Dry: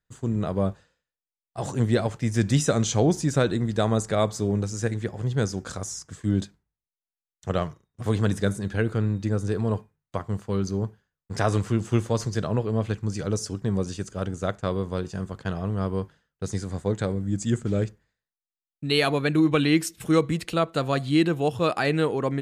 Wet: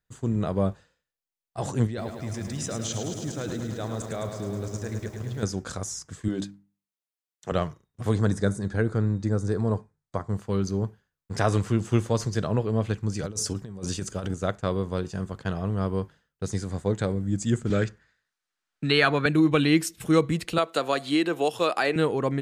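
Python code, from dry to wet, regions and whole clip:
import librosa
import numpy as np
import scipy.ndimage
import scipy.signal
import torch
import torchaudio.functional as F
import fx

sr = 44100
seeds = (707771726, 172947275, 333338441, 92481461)

y = fx.chain(x, sr, fx.lowpass(hz=8800.0, slope=12),
    fx.level_steps(step_db=16),
    fx.echo_crushed(ms=106, feedback_pct=80, bits=9, wet_db=-7), at=(1.87, 5.43))
y = fx.chain(y, sr, fx.highpass(hz=180.0, slope=12),
    fx.hum_notches(base_hz=50, count=6), at=(6.28, 7.52))
y = fx.chain(y, sr, fx.lowpass(hz=9800.0, slope=24),
    fx.peak_eq(hz=2800.0, db=-12.5, octaves=0.54), at=(8.13, 10.36))
y = fx.chain(y, sr, fx.high_shelf(hz=4600.0, db=4.5),
    fx.over_compress(threshold_db=-30.0, ratio=-0.5), at=(13.23, 14.34))
y = fx.chain(y, sr, fx.lowpass(hz=7100.0, slope=12),
    fx.peak_eq(hz=1500.0, db=10.0, octaves=0.84),
    fx.band_squash(depth_pct=40), at=(17.7, 19.26))
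y = fx.chain(y, sr, fx.highpass(hz=350.0, slope=12),
    fx.band_squash(depth_pct=100), at=(20.58, 21.96))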